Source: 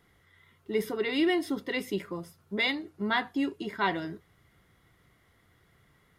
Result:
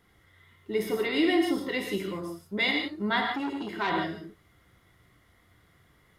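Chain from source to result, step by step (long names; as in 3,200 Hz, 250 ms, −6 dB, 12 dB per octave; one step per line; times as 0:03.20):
reverb whose tail is shaped and stops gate 190 ms flat, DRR 1.5 dB
0:03.35–0:03.90: saturating transformer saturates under 1,500 Hz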